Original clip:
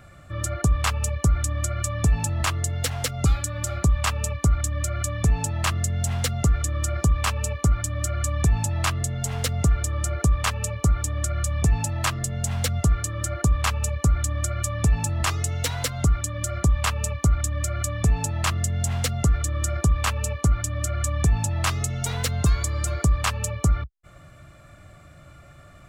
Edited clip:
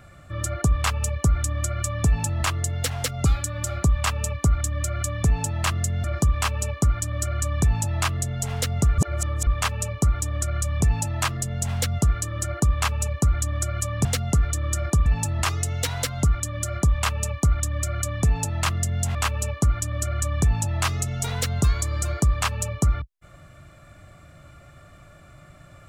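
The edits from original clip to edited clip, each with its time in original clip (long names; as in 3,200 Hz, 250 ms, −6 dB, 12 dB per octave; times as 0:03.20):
0:06.04–0:06.86: remove
0:09.80–0:10.29: reverse
0:18.96–0:19.97: move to 0:14.87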